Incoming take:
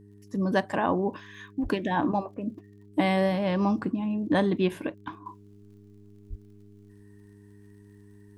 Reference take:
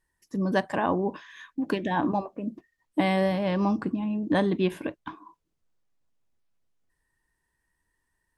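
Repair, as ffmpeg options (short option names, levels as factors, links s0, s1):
-filter_complex "[0:a]adeclick=t=4,bandreject=f=101.9:t=h:w=4,bandreject=f=203.8:t=h:w=4,bandreject=f=305.7:t=h:w=4,bandreject=f=407.6:t=h:w=4,asplit=3[s0][s1][s2];[s0]afade=t=out:st=1.62:d=0.02[s3];[s1]highpass=f=140:w=0.5412,highpass=f=140:w=1.3066,afade=t=in:st=1.62:d=0.02,afade=t=out:st=1.74:d=0.02[s4];[s2]afade=t=in:st=1.74:d=0.02[s5];[s3][s4][s5]amix=inputs=3:normalize=0,asplit=3[s6][s7][s8];[s6]afade=t=out:st=6.29:d=0.02[s9];[s7]highpass=f=140:w=0.5412,highpass=f=140:w=1.3066,afade=t=in:st=6.29:d=0.02,afade=t=out:st=6.41:d=0.02[s10];[s8]afade=t=in:st=6.41:d=0.02[s11];[s9][s10][s11]amix=inputs=3:normalize=0,asetnsamples=n=441:p=0,asendcmd='5.26 volume volume -9dB',volume=1"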